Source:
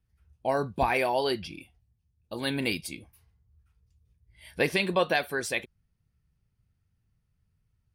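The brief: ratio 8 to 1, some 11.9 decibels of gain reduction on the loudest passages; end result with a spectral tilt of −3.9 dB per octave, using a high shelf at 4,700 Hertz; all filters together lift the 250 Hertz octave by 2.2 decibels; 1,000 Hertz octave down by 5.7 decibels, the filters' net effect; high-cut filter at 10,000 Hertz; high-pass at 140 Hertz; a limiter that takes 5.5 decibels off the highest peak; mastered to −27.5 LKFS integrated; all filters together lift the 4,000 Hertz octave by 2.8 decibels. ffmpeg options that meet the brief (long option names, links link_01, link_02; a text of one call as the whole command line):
ffmpeg -i in.wav -af "highpass=140,lowpass=10000,equalizer=frequency=250:width_type=o:gain=4,equalizer=frequency=1000:width_type=o:gain=-8.5,equalizer=frequency=4000:width_type=o:gain=5.5,highshelf=frequency=4700:gain=-3,acompressor=threshold=-33dB:ratio=8,volume=12.5dB,alimiter=limit=-15dB:level=0:latency=1" out.wav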